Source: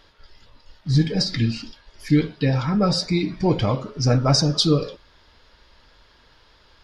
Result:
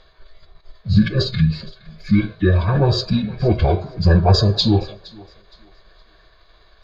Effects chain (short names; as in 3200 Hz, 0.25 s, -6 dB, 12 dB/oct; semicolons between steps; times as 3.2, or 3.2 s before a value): high shelf 3300 Hz -7 dB; fixed phaser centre 1900 Hz, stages 8; formant-preserving pitch shift -6.5 st; on a send: thinning echo 0.466 s, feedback 30%, high-pass 200 Hz, level -22 dB; on the sum: gain +8 dB